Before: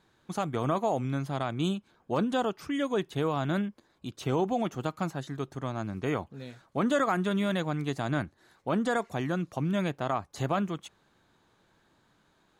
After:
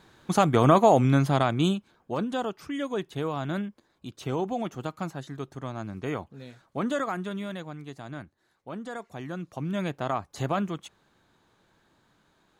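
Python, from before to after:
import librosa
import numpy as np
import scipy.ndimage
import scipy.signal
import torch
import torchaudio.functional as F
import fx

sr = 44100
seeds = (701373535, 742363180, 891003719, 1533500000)

y = fx.gain(x, sr, db=fx.line((1.27, 10.0), (2.16, -1.5), (6.84, -1.5), (7.84, -9.5), (8.89, -9.5), (10.0, 1.0)))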